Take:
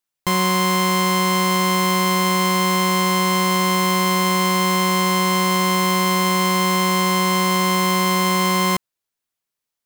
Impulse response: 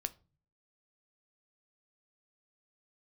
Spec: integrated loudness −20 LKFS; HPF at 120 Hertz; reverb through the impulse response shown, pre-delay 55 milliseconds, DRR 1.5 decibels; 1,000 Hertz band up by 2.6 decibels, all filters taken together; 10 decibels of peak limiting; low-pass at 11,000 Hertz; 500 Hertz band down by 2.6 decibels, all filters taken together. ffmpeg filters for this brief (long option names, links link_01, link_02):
-filter_complex "[0:a]highpass=120,lowpass=11000,equalizer=frequency=500:width_type=o:gain=-4.5,equalizer=frequency=1000:width_type=o:gain=3.5,alimiter=limit=-15dB:level=0:latency=1,asplit=2[link_01][link_02];[1:a]atrim=start_sample=2205,adelay=55[link_03];[link_02][link_03]afir=irnorm=-1:irlink=0,volume=-1dB[link_04];[link_01][link_04]amix=inputs=2:normalize=0,volume=4dB"